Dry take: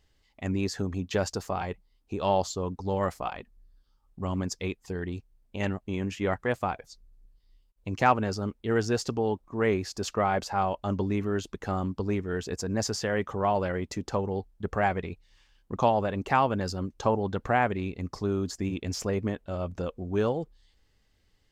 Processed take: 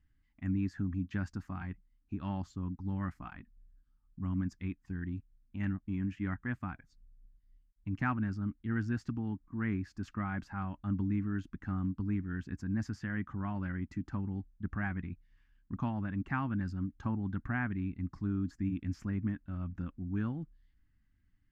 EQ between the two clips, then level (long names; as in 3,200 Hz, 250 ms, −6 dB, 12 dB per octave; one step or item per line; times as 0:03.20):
drawn EQ curve 290 Hz 0 dB, 460 Hz −27 dB, 1,600 Hz −3 dB, 3,800 Hz −20 dB, 8,000 Hz −23 dB
−2.5 dB